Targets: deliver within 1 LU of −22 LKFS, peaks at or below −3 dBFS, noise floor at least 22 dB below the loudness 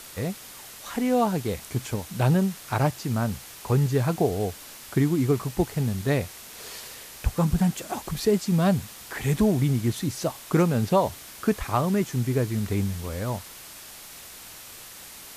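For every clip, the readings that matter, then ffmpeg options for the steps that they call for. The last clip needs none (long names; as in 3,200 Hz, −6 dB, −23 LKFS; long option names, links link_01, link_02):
background noise floor −44 dBFS; target noise floor −48 dBFS; integrated loudness −25.5 LKFS; sample peak −9.5 dBFS; target loudness −22.0 LKFS
→ -af "afftdn=noise_reduction=6:noise_floor=-44"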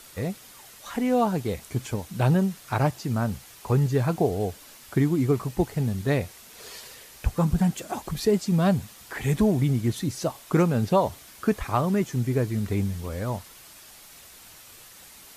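background noise floor −49 dBFS; integrated loudness −26.0 LKFS; sample peak −10.0 dBFS; target loudness −22.0 LKFS
→ -af "volume=4dB"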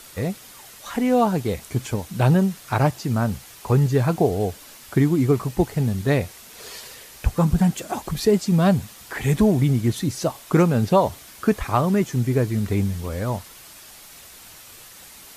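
integrated loudness −22.0 LKFS; sample peak −6.0 dBFS; background noise floor −45 dBFS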